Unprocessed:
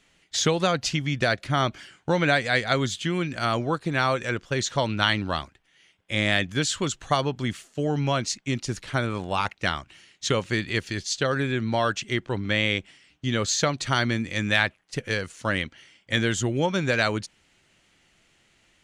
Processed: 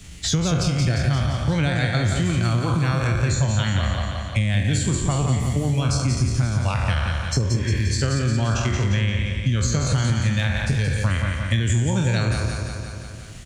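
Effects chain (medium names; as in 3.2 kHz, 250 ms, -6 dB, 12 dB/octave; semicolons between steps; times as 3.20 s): spectral sustain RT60 1.21 s; peaking EQ 66 Hz +11.5 dB 1.6 oct; spectral noise reduction 9 dB; tone controls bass +14 dB, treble +12 dB; spectral replace 10.12–10.78 s, 1.2–4.1 kHz both; tempo 1.4×; compression, threshold -16 dBFS, peak gain reduction 10 dB; feedback delay 174 ms, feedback 46%, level -6 dB; three bands compressed up and down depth 70%; trim -3 dB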